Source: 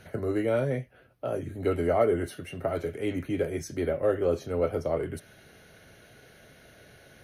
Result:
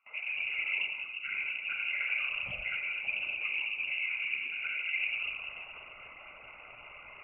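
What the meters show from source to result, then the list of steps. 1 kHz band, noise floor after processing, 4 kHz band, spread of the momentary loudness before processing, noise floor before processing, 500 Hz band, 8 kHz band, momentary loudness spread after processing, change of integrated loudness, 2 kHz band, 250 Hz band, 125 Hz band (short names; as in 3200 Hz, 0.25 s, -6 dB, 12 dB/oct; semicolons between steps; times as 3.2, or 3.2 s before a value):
-13.5 dB, -51 dBFS, +10.5 dB, 9 LU, -56 dBFS, -31.5 dB, under -30 dB, 17 LU, -3.0 dB, +12.0 dB, under -30 dB, under -25 dB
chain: bin magnitudes rounded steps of 30 dB; reverse; compressor 16:1, threshold -35 dBFS, peak gain reduction 17 dB; reverse; shoebox room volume 1200 m³, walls mixed, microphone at 3 m; whisperiser; gate with hold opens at -41 dBFS; small resonant body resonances 710/2200 Hz, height 6 dB; inverted band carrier 2800 Hz; Doppler distortion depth 0.16 ms; gain -3 dB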